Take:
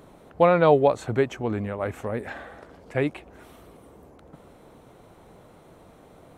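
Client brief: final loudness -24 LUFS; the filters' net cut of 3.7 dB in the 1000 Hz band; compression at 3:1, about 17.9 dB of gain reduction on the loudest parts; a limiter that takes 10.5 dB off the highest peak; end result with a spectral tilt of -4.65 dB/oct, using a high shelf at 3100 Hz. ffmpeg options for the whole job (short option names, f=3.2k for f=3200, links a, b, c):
-af "equalizer=f=1k:t=o:g=-4.5,highshelf=f=3.1k:g=-6.5,acompressor=threshold=-40dB:ratio=3,volume=23.5dB,alimiter=limit=-11dB:level=0:latency=1"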